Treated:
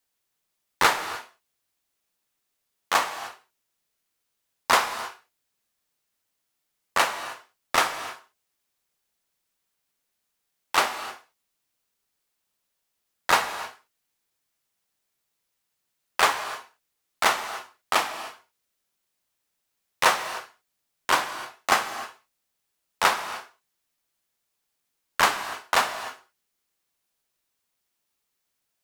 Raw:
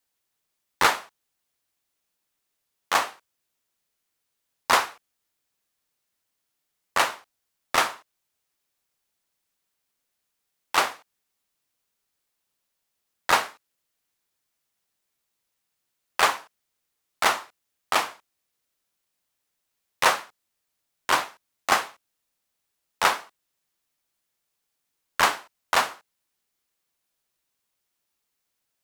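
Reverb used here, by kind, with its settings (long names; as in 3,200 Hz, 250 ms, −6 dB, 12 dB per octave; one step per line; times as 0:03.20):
reverb whose tail is shaped and stops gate 330 ms flat, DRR 9.5 dB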